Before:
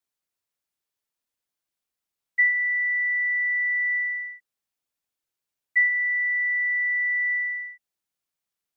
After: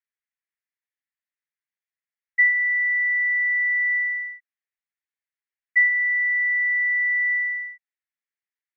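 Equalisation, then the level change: band-pass filter 1.9 kHz, Q 4.4; +3.0 dB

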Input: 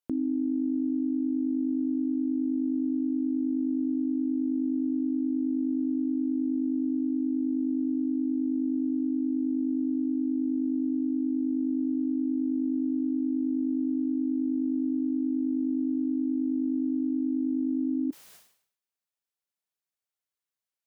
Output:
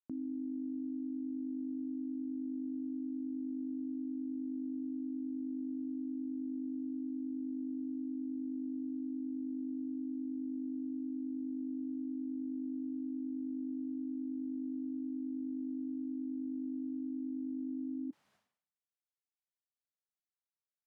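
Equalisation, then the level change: band-pass filter 330 Hz, Q 0.62; peaking EQ 410 Hz -12.5 dB 1.2 oct; -4.5 dB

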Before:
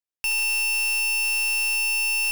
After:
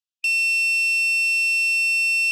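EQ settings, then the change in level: brick-wall FIR high-pass 2.5 kHz; distance through air 53 m; treble shelf 8 kHz -6 dB; +5.5 dB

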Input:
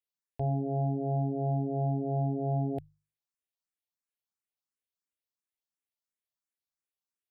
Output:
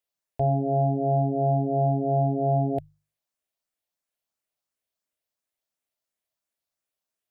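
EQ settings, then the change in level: peaking EQ 630 Hz +8.5 dB 0.4 oct; +5.0 dB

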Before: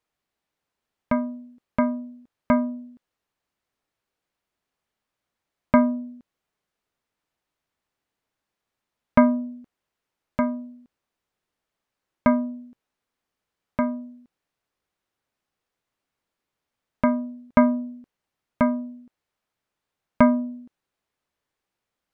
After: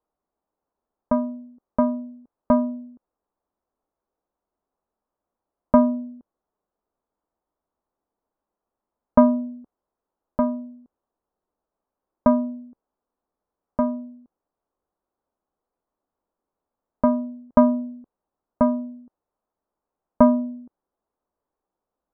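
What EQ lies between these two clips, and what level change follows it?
low-pass 1.1 kHz 24 dB/octave; peaking EQ 120 Hz -12.5 dB 0.9 oct; +3.5 dB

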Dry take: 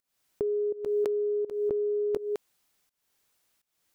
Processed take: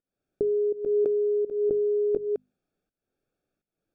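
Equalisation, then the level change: boxcar filter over 44 samples; peaking EQ 71 Hz -4.5 dB 1.8 oct; hum notches 50/100/150/200/250 Hz; +6.5 dB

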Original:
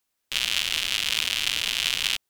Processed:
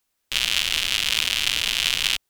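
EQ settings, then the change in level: bass shelf 62 Hz +6.5 dB; +3.0 dB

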